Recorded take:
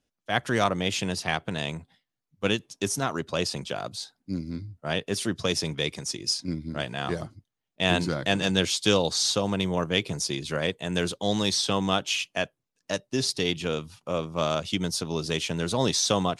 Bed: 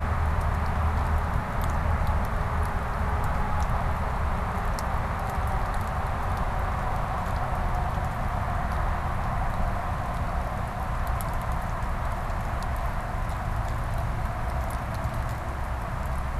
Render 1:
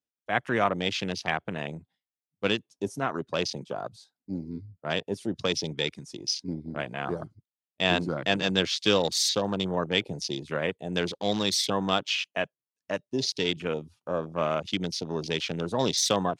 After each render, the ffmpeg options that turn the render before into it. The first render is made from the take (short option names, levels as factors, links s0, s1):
-af "afwtdn=0.02,highpass=f=180:p=1"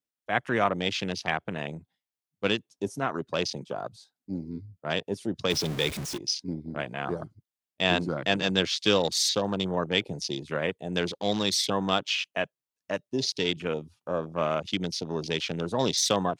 -filter_complex "[0:a]asettb=1/sr,asplit=3[s0][s1][s2];[s0]atrim=end=5.504[s3];[s1]atrim=start=5.5:end=6.18,asetpts=PTS-STARTPTS,afade=t=in:d=0.004:c=qsin,afade=t=out:st=0.676:d=0.004:c=qsin,aeval=exprs='val(0)+0.5*0.0282*sgn(val(0))':c=same[s4];[s2]atrim=start=6.176[s5];[s3][s4]acrossfade=d=0.004:c1=hsin:c2=qsin[s6];[s6][s5]acrossfade=d=0.004:c1=qsin:c2=hsin"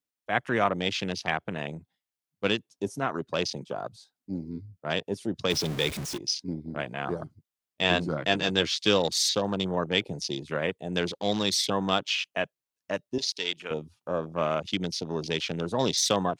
-filter_complex "[0:a]asettb=1/sr,asplit=3[s0][s1][s2];[s0]atrim=end=7.244[s3];[s1]atrim=start=7.24:end=8.73,asetpts=PTS-STARTPTS,afade=t=in:d=0.004:c=qsin,afade=t=out:st=1.486:d=0.004:c=qsin,asplit=2[s4][s5];[s5]adelay=13,volume=0.316[s6];[s4][s6]amix=inputs=2:normalize=0,atrim=end_sample=65709[s7];[s2]atrim=start=8.726[s8];[s3][s7]acrossfade=d=0.004:c1=hsin:c2=qsin[s9];[s9][s8]acrossfade=d=0.004:c1=qsin:c2=hsin,asettb=1/sr,asplit=3[s10][s11][s12];[s10]atrim=end=13.184[s13];[s11]atrim=start=13.18:end=13.71,asetpts=PTS-STARTPTS,afade=t=in:d=0.004:c=qsin,afade=t=out:st=0.526:d=0.004:c=qsin,highpass=f=1100:p=1[s14];[s12]atrim=start=13.706[s15];[s13][s14]acrossfade=d=0.004:c1=hsin:c2=qsin[s16];[s16][s15]acrossfade=d=0.004:c1=qsin:c2=hsin"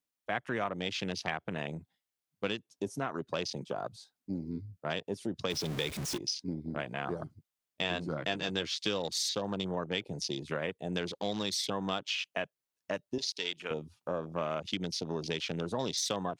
-af "acompressor=threshold=0.0251:ratio=3"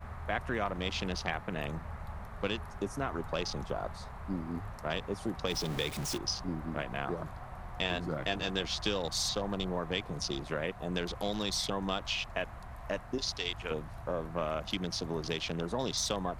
-filter_complex "[1:a]volume=0.141[s0];[0:a][s0]amix=inputs=2:normalize=0"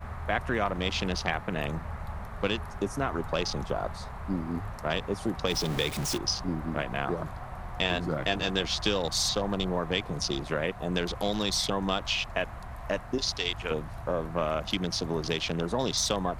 -af "volume=1.78"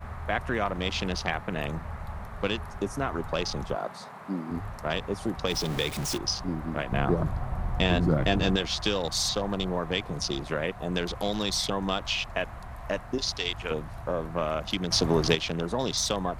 -filter_complex "[0:a]asettb=1/sr,asplit=3[s0][s1][s2];[s0]atrim=end=3.754[s3];[s1]atrim=start=3.75:end=4.51,asetpts=PTS-STARTPTS,afade=t=in:d=0.004:c=qsin,afade=t=out:st=0.756:d=0.004:c=qsin,highpass=f=170:w=0.5412,highpass=f=170:w=1.3066[s4];[s2]atrim=start=4.506[s5];[s3][s4]acrossfade=d=0.004:c1=hsin:c2=qsin[s6];[s6][s5]acrossfade=d=0.004:c1=qsin:c2=hsin,asettb=1/sr,asplit=3[s7][s8][s9];[s7]atrim=end=6.924[s10];[s8]atrim=start=6.92:end=8.56,asetpts=PTS-STARTPTS,afade=t=in:d=0.004:c=qsin,afade=t=out:st=1.636:d=0.004:c=qsin,lowshelf=f=410:g=10.5[s11];[s9]atrim=start=8.556[s12];[s10][s11]acrossfade=d=0.004:c1=hsin:c2=qsin[s13];[s13][s12]acrossfade=d=0.004:c1=qsin:c2=hsin,asplit=3[s14][s15][s16];[s14]atrim=end=14.912[s17];[s15]atrim=start=14.908:end=15.352,asetpts=PTS-STARTPTS,volume=2.24[s18];[s16]atrim=start=15.348[s19];[s17][s18]acrossfade=d=0.004:c1=hsin:c2=hsin[s20];[s20][s19]acrossfade=d=0.004:c1=hsin:c2=hsin"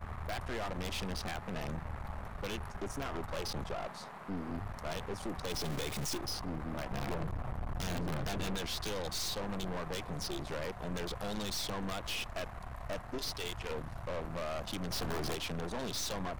-af "aeval=exprs='(mod(5.31*val(0)+1,2)-1)/5.31':c=same,aeval=exprs='(tanh(56.2*val(0)+0.75)-tanh(0.75))/56.2':c=same"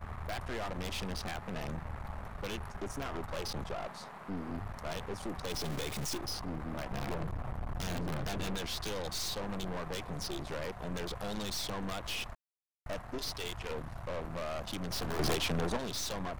-filter_complex "[0:a]asettb=1/sr,asplit=3[s0][s1][s2];[s0]atrim=end=15.194[s3];[s1]atrim=start=15.19:end=15.77,asetpts=PTS-STARTPTS,afade=t=in:d=0.004:c=qsin,afade=t=out:st=0.576:d=0.004:c=qsin,acontrast=46[s4];[s2]atrim=start=15.766[s5];[s3][s4]acrossfade=d=0.004:c1=hsin:c2=qsin[s6];[s6][s5]acrossfade=d=0.004:c1=qsin:c2=hsin,asplit=3[s7][s8][s9];[s7]atrim=end=12.35,asetpts=PTS-STARTPTS,afade=t=out:st=12.346:d=0.004:c=hsin[s10];[s8]atrim=start=12.35:end=12.86,asetpts=PTS-STARTPTS,volume=0[s11];[s9]atrim=start=12.86,asetpts=PTS-STARTPTS,afade=t=in:d=0.004:c=hsin[s12];[s10][s11][s12]concat=n=3:v=0:a=1"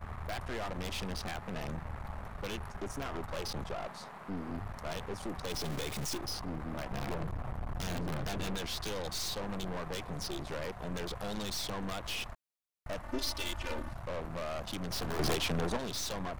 -filter_complex "[0:a]asettb=1/sr,asplit=3[s0][s1][s2];[s0]atrim=end=13.024[s3];[s1]atrim=start=13.02:end=13.93,asetpts=PTS-STARTPTS,afade=t=in:d=0.004:c=qsin,afade=t=out:st=0.906:d=0.004:c=qsin,aecho=1:1:3.4:1,atrim=end_sample=40131[s4];[s2]atrim=start=13.926[s5];[s3][s4]acrossfade=d=0.004:c1=hsin:c2=qsin[s6];[s6][s5]acrossfade=d=0.004:c1=qsin:c2=hsin"